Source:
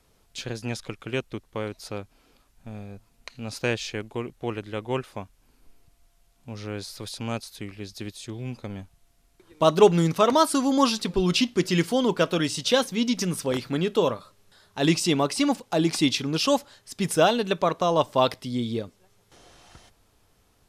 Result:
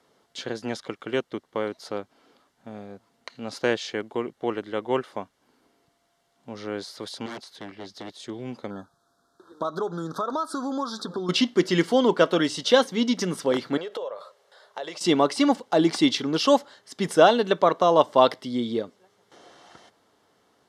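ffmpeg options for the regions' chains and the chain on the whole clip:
-filter_complex "[0:a]asettb=1/sr,asplit=3[s0][s1][s2];[s0]atrim=end=7.264[s3];[s1]atrim=start=7.26:end=8.2,asetpts=PTS-STARTPTS,afade=t=in:d=0.004:c=qsin,afade=t=out:st=0.936:d=0.004:c=qsin,aeval=exprs='0.0251*(abs(mod(val(0)/0.0251+3,4)-2)-1)':c=same,highshelf=f=8100:g=-8.5[s4];[s2]atrim=start=8.196[s5];[s3][s4]acrossfade=d=0.004:c1=hsin:c2=qsin[s6];[s6][s5]acrossfade=d=0.004:c1=qsin:c2=hsin,asettb=1/sr,asplit=3[s7][s8][s9];[s7]atrim=end=8.704[s10];[s8]atrim=start=8.7:end=11.29,asetpts=PTS-STARTPTS,afade=t=in:d=0.004:c=qsin,afade=t=out:st=2.586:d=0.004:c=qsin,equalizer=f=1300:w=3.5:g=9.5,acompressor=threshold=0.0398:ratio=8:attack=3.2:release=140:knee=1:detection=peak,asuperstop=centerf=2400:order=12:qfactor=1.4[s11];[s9]atrim=start=11.286[s12];[s10][s11]acrossfade=d=0.004:c1=hsin:c2=qsin[s13];[s13][s12]acrossfade=d=0.004:c1=qsin:c2=hsin,asettb=1/sr,asplit=3[s14][s15][s16];[s14]atrim=end=13.774[s17];[s15]atrim=start=13.77:end=15.01,asetpts=PTS-STARTPTS,afade=t=in:d=0.004:c=qsin,afade=t=out:st=1.236:d=0.004:c=qsin,lowshelf=f=370:t=q:w=3:g=-11.5,acompressor=threshold=0.0224:ratio=10:attack=3.2:release=140:knee=1:detection=peak[s18];[s16]atrim=start=15.006[s19];[s17][s18]acrossfade=d=0.004:c1=hsin:c2=qsin[s20];[s20][s19]acrossfade=d=0.004:c1=qsin:c2=hsin,highpass=250,aemphasis=mode=reproduction:type=50fm,bandreject=f=2500:w=5.7,volume=1.58"

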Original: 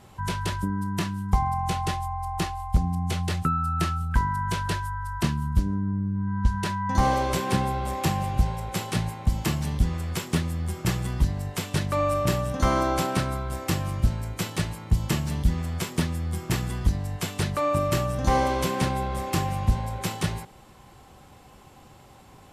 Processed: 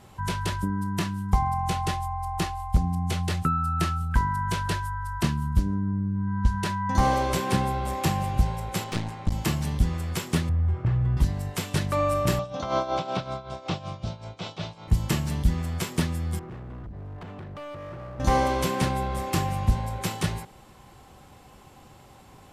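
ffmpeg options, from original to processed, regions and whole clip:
-filter_complex "[0:a]asettb=1/sr,asplit=3[s0][s1][s2];[s0]atrim=end=8.844[s3];[s1]atrim=start=8.84:end=9.32,asetpts=PTS-STARTPTS,afade=t=in:d=0.004:c=qsin,afade=t=out:st=0.476:d=0.004:c=qsin,lowpass=6900,aeval=exprs='clip(val(0),-1,0.0178)':c=same[s4];[s2]atrim=start=9.316[s5];[s3][s4]acrossfade=d=0.004:c1=hsin:c2=qsin[s6];[s6][s5]acrossfade=d=0.004:c1=qsin:c2=hsin,asettb=1/sr,asplit=3[s7][s8][s9];[s7]atrim=end=10.494[s10];[s8]atrim=start=10.49:end=11.17,asetpts=PTS-STARTPTS,afade=t=in:d=0.004:c=qsin,afade=t=out:st=0.676:d=0.004:c=qsin,lowpass=1700,lowshelf=f=150:t=q:w=3:g=6.5,acompressor=threshold=0.1:ratio=5:attack=3.2:release=140:knee=1:detection=peak[s11];[s9]atrim=start=11.166[s12];[s10][s11]acrossfade=d=0.004:c1=hsin:c2=qsin[s13];[s13][s12]acrossfade=d=0.004:c1=qsin:c2=hsin,asettb=1/sr,asplit=3[s14][s15][s16];[s14]atrim=end=12.394[s17];[s15]atrim=start=12.39:end=14.88,asetpts=PTS-STARTPTS,afade=t=in:d=0.004:c=qsin,afade=t=out:st=2.486:d=0.004:c=qsin,acrossover=split=3500[s18][s19];[s19]acompressor=threshold=0.00891:ratio=4:attack=1:release=60[s20];[s18][s20]amix=inputs=2:normalize=0,tremolo=f=5.3:d=0.73,highpass=130,equalizer=f=240:t=q:w=4:g=-7,equalizer=f=340:t=q:w=4:g=-4,equalizer=f=680:t=q:w=4:g=7,equalizer=f=1800:t=q:w=4:g=-10,equalizer=f=3600:t=q:w=4:g=7,equalizer=f=5500:t=q:w=4:g=3,lowpass=f=6100:w=0.5412,lowpass=f=6100:w=1.3066[s21];[s16]atrim=start=14.876[s22];[s17][s21]acrossfade=d=0.004:c1=hsin:c2=qsin[s23];[s23][s22]acrossfade=d=0.004:c1=qsin:c2=hsin,asettb=1/sr,asplit=3[s24][s25][s26];[s24]atrim=end=16.394[s27];[s25]atrim=start=16.39:end=18.2,asetpts=PTS-STARTPTS,afade=t=in:d=0.004:c=qsin,afade=t=out:st=1.806:d=0.004:c=qsin,lowpass=1300,acompressor=threshold=0.0316:ratio=12:attack=3.2:release=140:knee=1:detection=peak,asoftclip=type=hard:threshold=0.0158[s28];[s26]atrim=start=18.196[s29];[s27][s28]acrossfade=d=0.004:c1=hsin:c2=qsin[s30];[s30][s29]acrossfade=d=0.004:c1=qsin:c2=hsin"

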